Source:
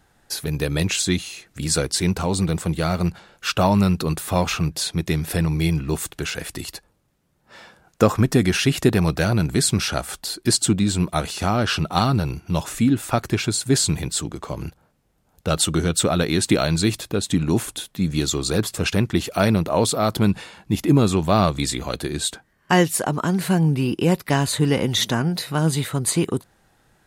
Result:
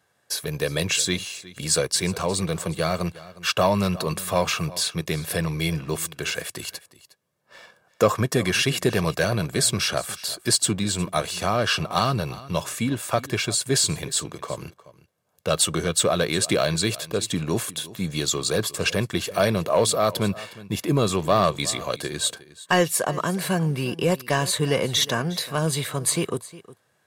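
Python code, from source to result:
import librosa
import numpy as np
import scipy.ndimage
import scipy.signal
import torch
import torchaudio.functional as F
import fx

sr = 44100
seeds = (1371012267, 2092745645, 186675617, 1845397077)

p1 = scipy.signal.sosfilt(scipy.signal.butter(4, 89.0, 'highpass', fs=sr, output='sos'), x)
p2 = fx.low_shelf(p1, sr, hz=200.0, db=-8.5)
p3 = p2 + 0.45 * np.pad(p2, (int(1.8 * sr / 1000.0), 0))[:len(p2)]
p4 = fx.leveller(p3, sr, passes=1)
p5 = p4 + fx.echo_single(p4, sr, ms=360, db=-18.5, dry=0)
y = F.gain(torch.from_numpy(p5), -4.0).numpy()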